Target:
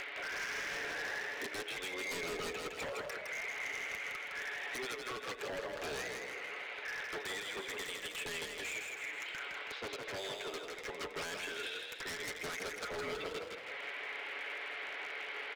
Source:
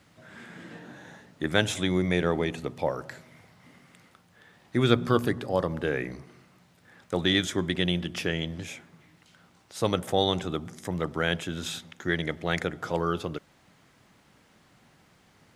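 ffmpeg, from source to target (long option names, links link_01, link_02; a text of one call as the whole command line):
ffmpeg -i in.wav -filter_complex "[0:a]tiltshelf=frequency=970:gain=-7,bandreject=frequency=1200:width=11,aecho=1:1:7.1:0.72,acompressor=mode=upward:threshold=-37dB:ratio=2.5,alimiter=limit=-14dB:level=0:latency=1:release=237,acompressor=threshold=-38dB:ratio=10,highpass=frequency=400:width=0.5412,highpass=frequency=400:width=1.3066,equalizer=frequency=410:width_type=q:width=4:gain=8,equalizer=frequency=950:width_type=q:width=4:gain=-3,equalizer=frequency=2200:width_type=q:width=4:gain=6,lowpass=frequency=3000:width=0.5412,lowpass=frequency=3000:width=1.3066,aeval=exprs='0.01*(abs(mod(val(0)/0.01+3,4)-2)-1)':channel_layout=same,asplit=8[link_01][link_02][link_03][link_04][link_05][link_06][link_07][link_08];[link_02]adelay=161,afreqshift=33,volume=-4dB[link_09];[link_03]adelay=322,afreqshift=66,volume=-9.7dB[link_10];[link_04]adelay=483,afreqshift=99,volume=-15.4dB[link_11];[link_05]adelay=644,afreqshift=132,volume=-21dB[link_12];[link_06]adelay=805,afreqshift=165,volume=-26.7dB[link_13];[link_07]adelay=966,afreqshift=198,volume=-32.4dB[link_14];[link_08]adelay=1127,afreqshift=231,volume=-38.1dB[link_15];[link_01][link_09][link_10][link_11][link_12][link_13][link_14][link_15]amix=inputs=8:normalize=0,volume=4dB" out.wav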